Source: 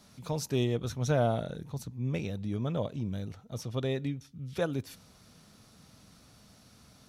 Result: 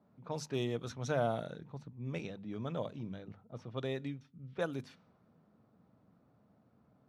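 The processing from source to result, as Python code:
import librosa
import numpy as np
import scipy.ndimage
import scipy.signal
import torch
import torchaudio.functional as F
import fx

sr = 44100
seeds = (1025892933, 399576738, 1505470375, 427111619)

y = scipy.signal.sosfilt(scipy.signal.butter(2, 120.0, 'highpass', fs=sr, output='sos'), x)
y = fx.hum_notches(y, sr, base_hz=50, count=5)
y = fx.dynamic_eq(y, sr, hz=1300.0, q=0.77, threshold_db=-50.0, ratio=4.0, max_db=4)
y = fx.env_lowpass(y, sr, base_hz=820.0, full_db=-27.0)
y = F.gain(torch.from_numpy(y), -6.0).numpy()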